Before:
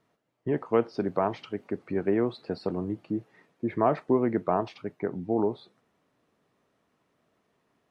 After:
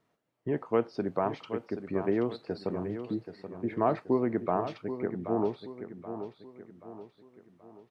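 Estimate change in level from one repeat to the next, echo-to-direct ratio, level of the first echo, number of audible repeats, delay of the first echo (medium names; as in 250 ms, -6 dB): -7.5 dB, -9.0 dB, -10.0 dB, 4, 779 ms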